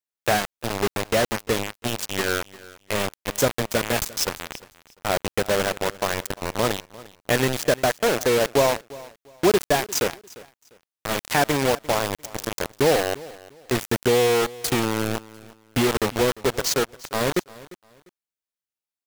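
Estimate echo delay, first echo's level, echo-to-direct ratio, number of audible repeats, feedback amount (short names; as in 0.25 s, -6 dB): 0.349 s, -20.0 dB, -19.5 dB, 2, 26%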